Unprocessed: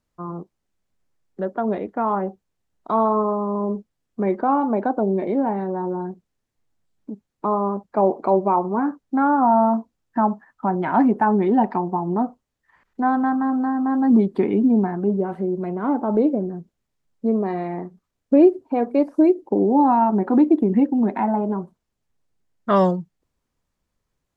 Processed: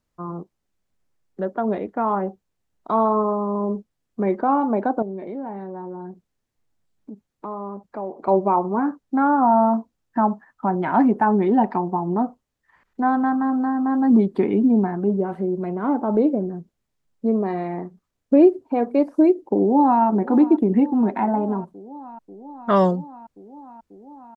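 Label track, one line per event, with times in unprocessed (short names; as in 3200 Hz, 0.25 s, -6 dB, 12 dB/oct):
5.020000	8.280000	compressor 2:1, threshold -36 dBFS
19.580000	20.020000	echo throw 0.54 s, feedback 85%, level -17.5 dB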